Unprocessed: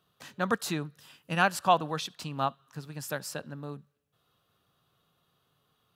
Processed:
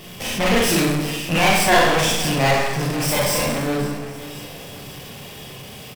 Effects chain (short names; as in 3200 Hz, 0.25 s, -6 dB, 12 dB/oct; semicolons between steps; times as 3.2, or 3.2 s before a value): minimum comb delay 0.37 ms; Schroeder reverb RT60 0.72 s, combs from 30 ms, DRR -6.5 dB; power-law curve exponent 0.5; on a send: feedback echo 0.529 s, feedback 59%, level -17.5 dB